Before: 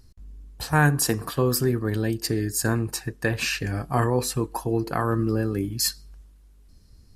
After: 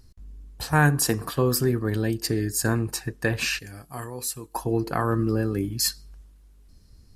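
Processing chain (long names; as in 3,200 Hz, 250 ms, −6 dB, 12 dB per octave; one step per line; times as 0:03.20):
0:03.59–0:04.55: first-order pre-emphasis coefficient 0.8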